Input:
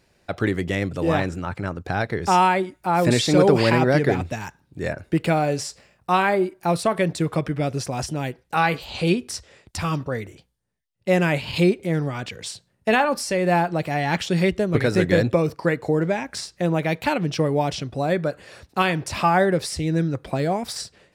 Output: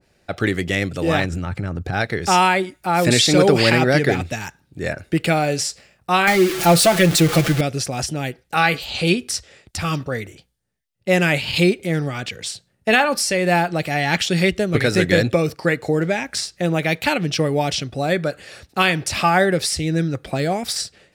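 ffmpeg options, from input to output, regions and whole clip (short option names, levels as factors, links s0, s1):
-filter_complex "[0:a]asettb=1/sr,asplit=3[s0][s1][s2];[s0]atrim=end=1.244[s3];[s1]atrim=start=1.24:end=1.93,asetpts=PTS-STARTPTS,afade=t=in:d=0.004:c=qsin,afade=t=out:st=0.686:d=0.004:c=qsin,lowshelf=f=230:g=11.5,acompressor=threshold=0.0794:ratio=5:attack=3.2:release=140:knee=1:detection=peak[s4];[s2]atrim=start=1.926[s5];[s3][s4]acrossfade=d=0.004:c1=hsin:c2=qsin[s6];[s6][s5]acrossfade=d=0.004:c1=qsin:c2=hsin,asettb=1/sr,asplit=3[s7][s8][s9];[s7]atrim=end=6.274[s10];[s8]atrim=start=6.27:end=7.61,asetpts=PTS-STARTPTS,afade=t=in:d=0.004:c=qsin,afade=t=out:st=1.336:d=0.004:c=qsin,aeval=exprs='val(0)+0.5*0.0596*sgn(val(0))':c=same,aecho=1:1:5.9:0.72,atrim=end_sample=59094[s11];[s9]atrim=start=7.606[s12];[s10][s11]acrossfade=d=0.004:c1=hsin:c2=qsin[s13];[s13][s12]acrossfade=d=0.004:c1=qsin:c2=hsin,bandreject=f=1000:w=7.3,adynamicequalizer=threshold=0.0178:dfrequency=1600:dqfactor=0.7:tfrequency=1600:tqfactor=0.7:attack=5:release=100:ratio=0.375:range=3.5:mode=boostabove:tftype=highshelf,volume=1.19"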